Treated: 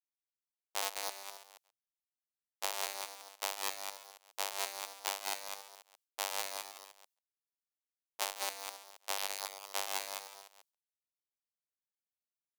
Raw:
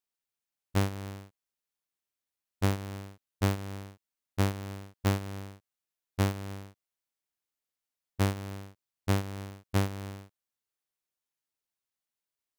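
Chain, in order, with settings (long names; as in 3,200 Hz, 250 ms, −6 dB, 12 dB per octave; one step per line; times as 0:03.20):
delay that plays each chunk backwards 137 ms, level −1.5 dB
noise gate with hold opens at −44 dBFS
high-pass filter 780 Hz 24 dB per octave
parametric band 1,500 Hz −11 dB 1.5 octaves
single-tap delay 203 ms −4.5 dB
level +4 dB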